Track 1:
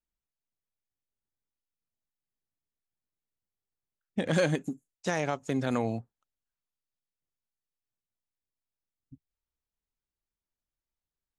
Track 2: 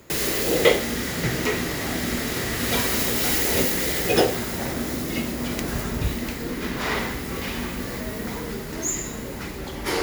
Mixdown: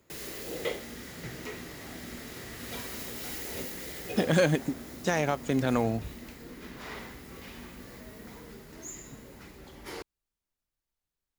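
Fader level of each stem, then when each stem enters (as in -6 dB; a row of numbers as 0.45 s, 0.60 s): +2.5 dB, -16.0 dB; 0.00 s, 0.00 s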